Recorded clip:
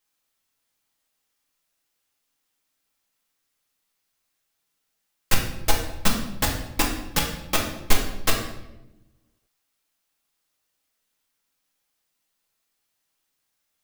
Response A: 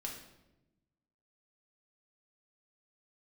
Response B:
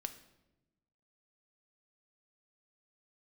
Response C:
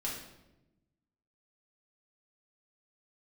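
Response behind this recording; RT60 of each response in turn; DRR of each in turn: A; 1.0, 1.0, 0.95 seconds; −1.0, 8.5, −5.5 decibels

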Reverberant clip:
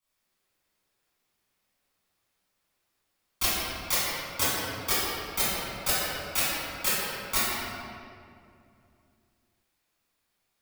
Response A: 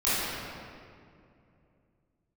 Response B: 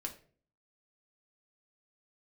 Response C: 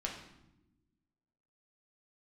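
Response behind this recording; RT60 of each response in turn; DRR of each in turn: A; 2.5 s, 0.45 s, non-exponential decay; −14.0, 1.5, −1.5 decibels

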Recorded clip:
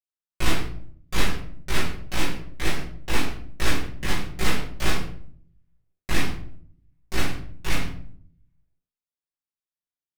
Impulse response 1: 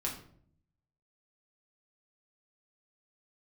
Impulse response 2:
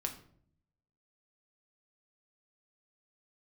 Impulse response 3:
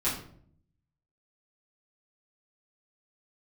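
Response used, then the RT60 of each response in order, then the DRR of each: 3; 0.60, 0.60, 0.60 seconds; −2.5, 3.5, −10.0 decibels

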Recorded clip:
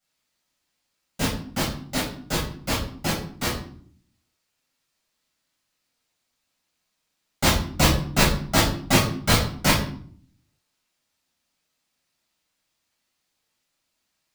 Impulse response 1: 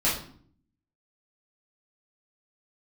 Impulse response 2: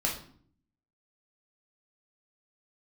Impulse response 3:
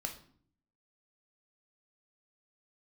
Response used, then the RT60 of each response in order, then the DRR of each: 1; 0.55, 0.55, 0.55 seconds; −8.5, −2.0, 3.5 decibels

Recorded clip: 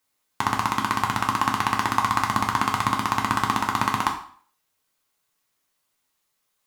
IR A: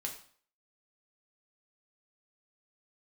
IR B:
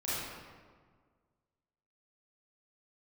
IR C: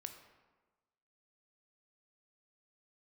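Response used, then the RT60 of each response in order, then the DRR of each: A; 0.50, 1.7, 1.3 seconds; 0.5, −11.0, 6.0 decibels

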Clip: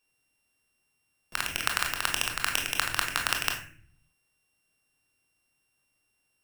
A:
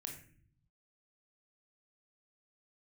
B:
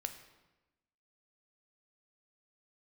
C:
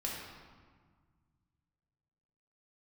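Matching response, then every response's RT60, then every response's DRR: A; non-exponential decay, 1.1 s, 1.6 s; 1.0, 7.0, −4.0 decibels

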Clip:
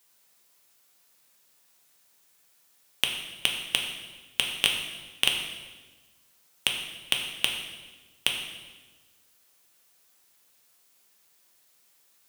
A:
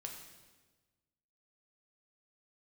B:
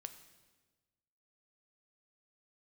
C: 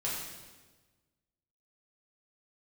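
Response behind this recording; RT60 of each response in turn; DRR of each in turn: A; 1.3, 1.3, 1.3 seconds; 1.0, 8.5, −7.0 decibels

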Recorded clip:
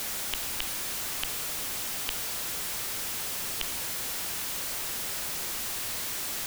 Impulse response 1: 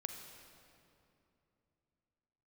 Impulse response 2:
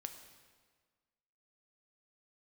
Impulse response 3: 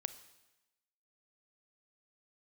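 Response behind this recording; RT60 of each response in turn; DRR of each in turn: 3; 2.9, 1.6, 1.0 seconds; 5.0, 6.0, 12.0 decibels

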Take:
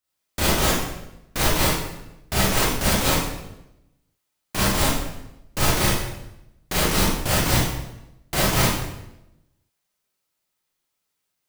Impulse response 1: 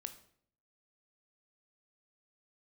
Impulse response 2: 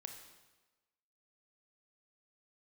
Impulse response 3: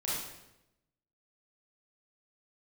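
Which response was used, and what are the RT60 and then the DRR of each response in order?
3; 0.60, 1.2, 0.90 seconds; 8.5, 4.0, −8.0 decibels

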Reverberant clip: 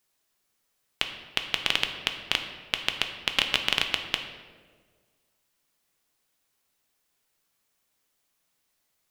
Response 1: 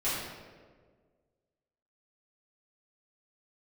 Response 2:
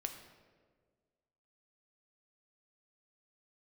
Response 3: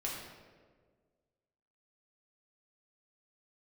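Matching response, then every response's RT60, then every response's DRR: 2; 1.6, 1.6, 1.6 seconds; −13.0, 4.5, −4.5 decibels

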